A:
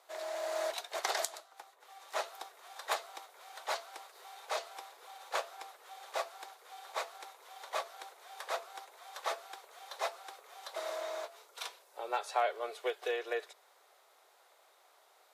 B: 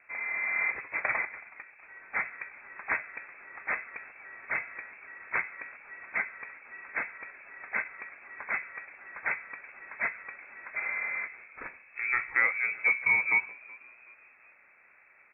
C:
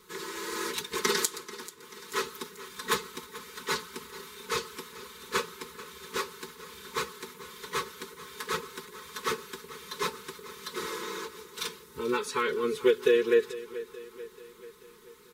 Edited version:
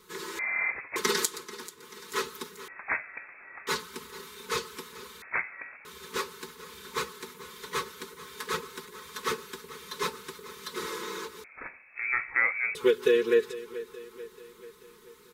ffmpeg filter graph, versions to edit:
-filter_complex "[1:a]asplit=4[a][b][c][d];[2:a]asplit=5[e][f][g][h][i];[e]atrim=end=0.392[j];[a]atrim=start=0.388:end=0.962[k];[f]atrim=start=0.958:end=2.682[l];[b]atrim=start=2.678:end=3.672[m];[g]atrim=start=3.668:end=5.222[n];[c]atrim=start=5.218:end=5.852[o];[h]atrim=start=5.848:end=11.442[p];[d]atrim=start=11.438:end=12.752[q];[i]atrim=start=12.748[r];[j][k]acrossfade=d=0.004:c1=hsin:c2=hsin[s];[s][l]acrossfade=d=0.004:c1=hsin:c2=hsin[t];[t][m]acrossfade=d=0.004:c1=hsin:c2=hsin[u];[u][n]acrossfade=d=0.004:c1=hsin:c2=hsin[v];[v][o]acrossfade=d=0.004:c1=hsin:c2=hsin[w];[w][p]acrossfade=d=0.004:c1=hsin:c2=hsin[x];[x][q]acrossfade=d=0.004:c1=hsin:c2=hsin[y];[y][r]acrossfade=d=0.004:c1=hsin:c2=hsin"

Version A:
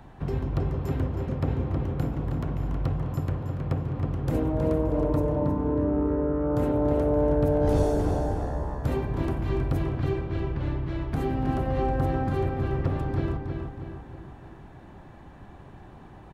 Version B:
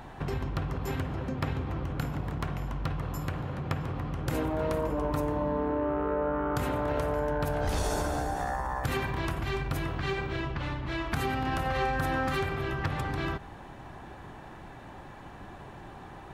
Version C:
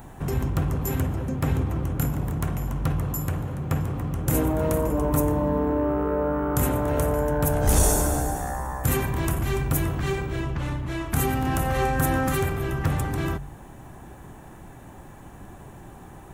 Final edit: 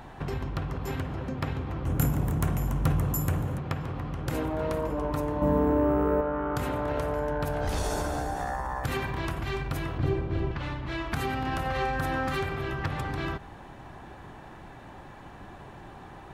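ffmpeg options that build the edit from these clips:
-filter_complex "[2:a]asplit=2[a][b];[1:a]asplit=4[c][d][e][f];[c]atrim=end=1.862[g];[a]atrim=start=1.858:end=3.582[h];[d]atrim=start=3.578:end=5.422[i];[b]atrim=start=5.418:end=6.212[j];[e]atrim=start=6.208:end=9.982[k];[0:a]atrim=start=9.978:end=10.512[l];[f]atrim=start=10.508[m];[g][h]acrossfade=d=0.004:c1=hsin:c2=hsin[n];[n][i]acrossfade=d=0.004:c1=hsin:c2=hsin[o];[o][j]acrossfade=d=0.004:c1=hsin:c2=hsin[p];[p][k]acrossfade=d=0.004:c1=hsin:c2=hsin[q];[q][l]acrossfade=d=0.004:c1=hsin:c2=hsin[r];[r][m]acrossfade=d=0.004:c1=hsin:c2=hsin"

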